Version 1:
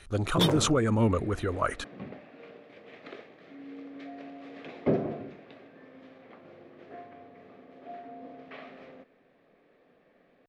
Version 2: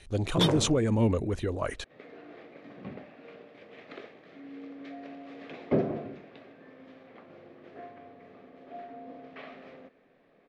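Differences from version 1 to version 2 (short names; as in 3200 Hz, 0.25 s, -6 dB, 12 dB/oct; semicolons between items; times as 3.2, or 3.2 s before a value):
speech: add bell 1300 Hz -12.5 dB 0.51 oct; second sound: entry +0.85 s; master: add LPF 9500 Hz 12 dB/oct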